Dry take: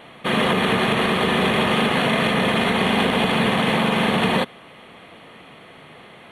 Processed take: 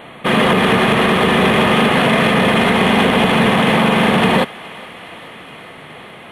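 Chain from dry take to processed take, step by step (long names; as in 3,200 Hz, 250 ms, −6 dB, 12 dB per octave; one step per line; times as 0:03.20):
parametric band 5,100 Hz −8 dB 0.81 octaves
in parallel at −7.5 dB: hard clipping −21 dBFS, distortion −8 dB
on the sum: feedback echo with a high-pass in the loop 418 ms, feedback 80%, high-pass 620 Hz, level −21 dB
level +4.5 dB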